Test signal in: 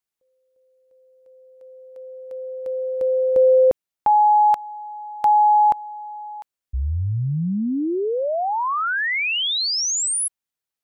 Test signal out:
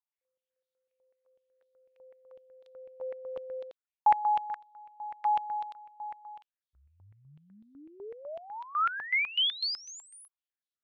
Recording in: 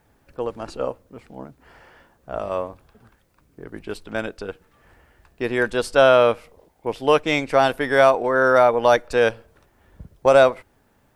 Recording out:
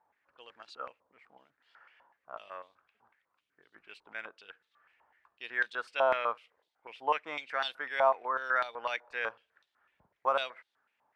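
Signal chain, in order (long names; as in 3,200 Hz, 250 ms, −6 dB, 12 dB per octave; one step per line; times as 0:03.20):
band-pass on a step sequencer 8 Hz 920–3,700 Hz
level −2.5 dB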